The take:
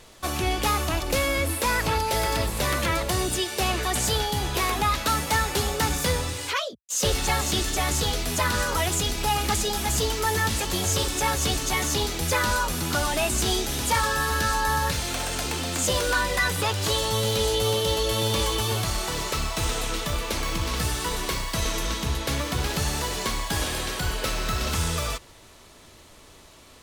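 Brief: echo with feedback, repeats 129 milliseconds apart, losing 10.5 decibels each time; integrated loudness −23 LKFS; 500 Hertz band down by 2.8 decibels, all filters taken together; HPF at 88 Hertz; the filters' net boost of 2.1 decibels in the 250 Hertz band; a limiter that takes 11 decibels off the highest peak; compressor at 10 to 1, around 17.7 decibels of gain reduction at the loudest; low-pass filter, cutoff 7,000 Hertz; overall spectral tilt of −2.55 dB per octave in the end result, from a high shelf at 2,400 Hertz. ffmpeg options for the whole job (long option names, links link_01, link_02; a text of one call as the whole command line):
ffmpeg -i in.wav -af "highpass=88,lowpass=7000,equalizer=frequency=250:width_type=o:gain=4.5,equalizer=frequency=500:width_type=o:gain=-5,highshelf=frequency=2400:gain=4,acompressor=threshold=-38dB:ratio=10,alimiter=level_in=12dB:limit=-24dB:level=0:latency=1,volume=-12dB,aecho=1:1:129|258|387:0.299|0.0896|0.0269,volume=20.5dB" out.wav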